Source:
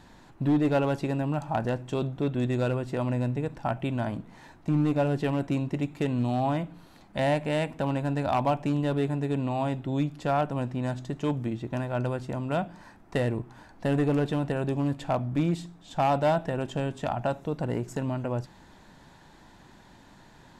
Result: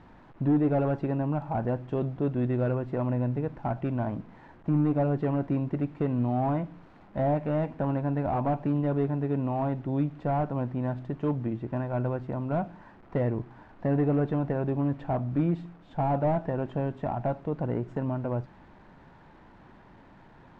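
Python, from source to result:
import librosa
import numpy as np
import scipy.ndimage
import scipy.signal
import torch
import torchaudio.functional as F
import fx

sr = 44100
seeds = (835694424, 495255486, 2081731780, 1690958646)

y = fx.delta_mod(x, sr, bps=64000, step_db=-47.0)
y = scipy.signal.sosfilt(scipy.signal.butter(2, 1600.0, 'lowpass', fs=sr, output='sos'), y)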